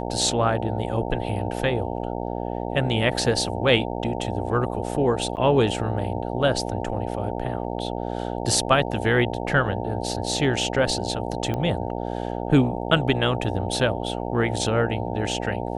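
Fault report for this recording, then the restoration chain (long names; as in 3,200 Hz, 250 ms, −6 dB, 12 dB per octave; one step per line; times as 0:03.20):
mains buzz 60 Hz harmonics 15 −29 dBFS
0:05.36–0:05.37: drop-out 9.2 ms
0:11.54: click −16 dBFS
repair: click removal
hum removal 60 Hz, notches 15
repair the gap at 0:05.36, 9.2 ms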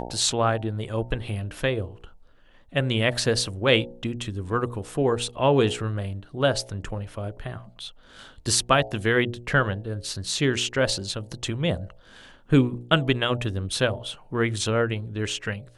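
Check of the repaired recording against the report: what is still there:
none of them is left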